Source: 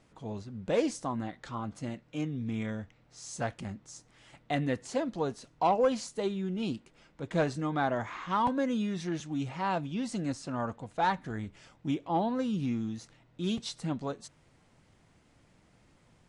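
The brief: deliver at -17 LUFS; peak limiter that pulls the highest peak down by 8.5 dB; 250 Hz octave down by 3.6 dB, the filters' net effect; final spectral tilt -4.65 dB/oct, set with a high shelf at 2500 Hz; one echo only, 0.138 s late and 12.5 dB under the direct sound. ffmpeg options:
-af "equalizer=f=250:t=o:g=-4.5,highshelf=f=2.5k:g=5,alimiter=level_in=0.5dB:limit=-24dB:level=0:latency=1,volume=-0.5dB,aecho=1:1:138:0.237,volume=19.5dB"

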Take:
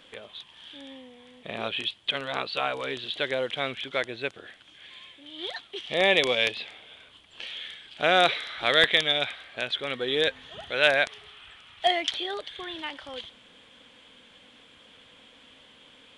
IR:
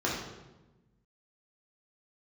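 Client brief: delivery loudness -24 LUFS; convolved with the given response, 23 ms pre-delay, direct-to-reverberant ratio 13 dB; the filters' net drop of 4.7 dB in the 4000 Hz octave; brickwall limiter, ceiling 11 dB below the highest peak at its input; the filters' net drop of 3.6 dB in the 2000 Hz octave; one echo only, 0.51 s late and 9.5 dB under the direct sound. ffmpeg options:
-filter_complex "[0:a]equalizer=f=2k:t=o:g=-3.5,equalizer=f=4k:t=o:g=-4.5,alimiter=limit=-19dB:level=0:latency=1,aecho=1:1:510:0.335,asplit=2[a][b];[1:a]atrim=start_sample=2205,adelay=23[c];[b][c]afir=irnorm=-1:irlink=0,volume=-23dB[d];[a][d]amix=inputs=2:normalize=0,volume=9dB"

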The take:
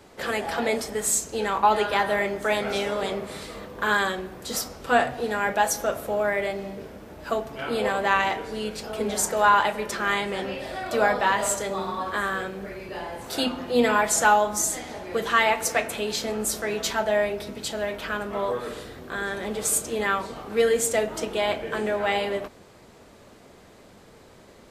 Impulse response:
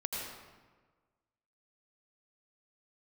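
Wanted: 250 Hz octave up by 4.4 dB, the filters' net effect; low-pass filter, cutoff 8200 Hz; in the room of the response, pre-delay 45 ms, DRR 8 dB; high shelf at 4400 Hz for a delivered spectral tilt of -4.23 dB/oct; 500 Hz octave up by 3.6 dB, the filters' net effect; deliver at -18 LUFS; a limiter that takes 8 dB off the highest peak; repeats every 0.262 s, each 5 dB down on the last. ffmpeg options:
-filter_complex "[0:a]lowpass=8.2k,equalizer=f=250:t=o:g=4.5,equalizer=f=500:t=o:g=3.5,highshelf=f=4.4k:g=-8.5,alimiter=limit=-13dB:level=0:latency=1,aecho=1:1:262|524|786|1048|1310|1572|1834:0.562|0.315|0.176|0.0988|0.0553|0.031|0.0173,asplit=2[a][b];[1:a]atrim=start_sample=2205,adelay=45[c];[b][c]afir=irnorm=-1:irlink=0,volume=-11dB[d];[a][d]amix=inputs=2:normalize=0,volume=5.5dB"

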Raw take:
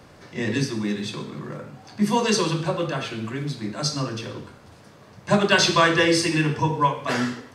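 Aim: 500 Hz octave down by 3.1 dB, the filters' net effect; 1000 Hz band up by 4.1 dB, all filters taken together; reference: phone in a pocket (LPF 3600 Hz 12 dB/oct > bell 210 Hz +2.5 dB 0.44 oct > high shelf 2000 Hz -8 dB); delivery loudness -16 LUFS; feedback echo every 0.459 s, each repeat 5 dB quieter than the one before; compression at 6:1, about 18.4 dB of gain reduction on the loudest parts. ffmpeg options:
-af "equalizer=f=500:t=o:g=-5.5,equalizer=f=1k:t=o:g=7.5,acompressor=threshold=-30dB:ratio=6,lowpass=3.6k,equalizer=f=210:t=o:w=0.44:g=2.5,highshelf=f=2k:g=-8,aecho=1:1:459|918|1377|1836|2295|2754|3213:0.562|0.315|0.176|0.0988|0.0553|0.031|0.0173,volume=17.5dB"

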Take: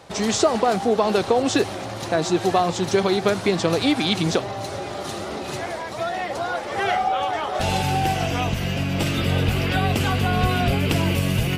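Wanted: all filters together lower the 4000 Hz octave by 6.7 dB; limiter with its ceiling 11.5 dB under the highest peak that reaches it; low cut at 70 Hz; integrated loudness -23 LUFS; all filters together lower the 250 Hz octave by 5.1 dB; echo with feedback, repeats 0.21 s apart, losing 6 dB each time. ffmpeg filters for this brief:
-af "highpass=70,equalizer=f=250:t=o:g=-7.5,equalizer=f=4k:t=o:g=-9,alimiter=limit=-19dB:level=0:latency=1,aecho=1:1:210|420|630|840|1050|1260:0.501|0.251|0.125|0.0626|0.0313|0.0157,volume=4.5dB"

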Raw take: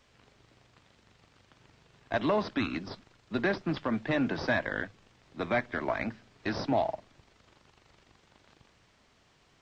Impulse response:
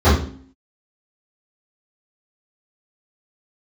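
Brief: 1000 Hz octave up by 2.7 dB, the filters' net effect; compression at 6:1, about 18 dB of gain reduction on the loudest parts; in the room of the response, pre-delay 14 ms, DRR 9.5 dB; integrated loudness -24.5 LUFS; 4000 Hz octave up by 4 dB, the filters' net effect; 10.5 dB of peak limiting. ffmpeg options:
-filter_complex "[0:a]equalizer=f=1k:t=o:g=3.5,equalizer=f=4k:t=o:g=4.5,acompressor=threshold=-42dB:ratio=6,alimiter=level_in=14dB:limit=-24dB:level=0:latency=1,volume=-14dB,asplit=2[a][b];[1:a]atrim=start_sample=2205,adelay=14[c];[b][c]afir=irnorm=-1:irlink=0,volume=-35dB[d];[a][d]amix=inputs=2:normalize=0,volume=25.5dB"

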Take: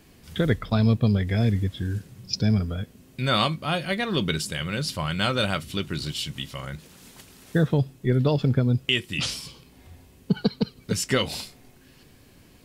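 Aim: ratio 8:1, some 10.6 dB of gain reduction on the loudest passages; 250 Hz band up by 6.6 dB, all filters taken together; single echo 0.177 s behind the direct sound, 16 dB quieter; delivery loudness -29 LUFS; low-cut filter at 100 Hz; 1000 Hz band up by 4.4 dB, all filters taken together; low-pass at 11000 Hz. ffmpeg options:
-af "highpass=100,lowpass=11k,equalizer=f=250:t=o:g=8.5,equalizer=f=1k:t=o:g=5.5,acompressor=threshold=-22dB:ratio=8,aecho=1:1:177:0.158,volume=-0.5dB"

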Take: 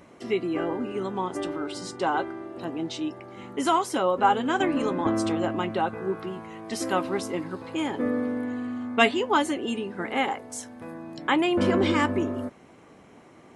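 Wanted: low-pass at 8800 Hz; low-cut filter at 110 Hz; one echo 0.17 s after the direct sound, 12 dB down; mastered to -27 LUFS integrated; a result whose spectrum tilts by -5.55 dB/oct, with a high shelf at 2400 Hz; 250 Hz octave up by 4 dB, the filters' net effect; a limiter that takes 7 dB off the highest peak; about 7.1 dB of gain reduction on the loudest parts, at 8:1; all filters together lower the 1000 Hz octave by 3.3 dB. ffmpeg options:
-af "highpass=110,lowpass=8.8k,equalizer=f=250:t=o:g=5.5,equalizer=f=1k:t=o:g=-3.5,highshelf=f=2.4k:g=-7.5,acompressor=threshold=-23dB:ratio=8,alimiter=limit=-20.5dB:level=0:latency=1,aecho=1:1:170:0.251,volume=2.5dB"

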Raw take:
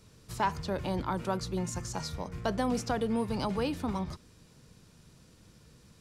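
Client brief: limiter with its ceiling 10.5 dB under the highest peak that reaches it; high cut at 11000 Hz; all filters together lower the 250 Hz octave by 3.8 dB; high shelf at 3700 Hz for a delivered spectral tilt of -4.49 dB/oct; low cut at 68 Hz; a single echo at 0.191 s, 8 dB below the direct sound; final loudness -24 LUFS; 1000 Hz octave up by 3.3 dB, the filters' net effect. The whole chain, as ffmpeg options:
-af "highpass=68,lowpass=11k,equalizer=f=250:t=o:g=-5,equalizer=f=1k:t=o:g=4,highshelf=f=3.7k:g=3.5,alimiter=level_in=0.5dB:limit=-24dB:level=0:latency=1,volume=-0.5dB,aecho=1:1:191:0.398,volume=11.5dB"

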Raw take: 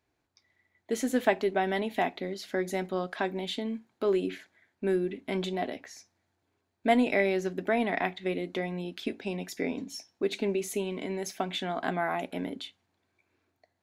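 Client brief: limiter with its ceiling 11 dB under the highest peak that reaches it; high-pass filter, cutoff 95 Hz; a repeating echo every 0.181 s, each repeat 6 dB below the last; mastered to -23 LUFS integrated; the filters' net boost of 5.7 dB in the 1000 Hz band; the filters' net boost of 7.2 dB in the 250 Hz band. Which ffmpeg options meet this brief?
-af "highpass=95,equalizer=f=250:t=o:g=8.5,equalizer=f=1k:t=o:g=8,alimiter=limit=-17dB:level=0:latency=1,aecho=1:1:181|362|543|724|905|1086:0.501|0.251|0.125|0.0626|0.0313|0.0157,volume=4.5dB"

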